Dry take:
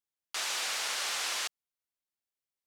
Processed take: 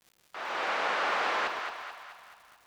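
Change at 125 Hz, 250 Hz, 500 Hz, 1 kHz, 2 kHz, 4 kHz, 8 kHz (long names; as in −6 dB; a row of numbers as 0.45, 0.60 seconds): can't be measured, +13.0 dB, +13.0 dB, +11.0 dB, +5.5 dB, −5.0 dB, −16.5 dB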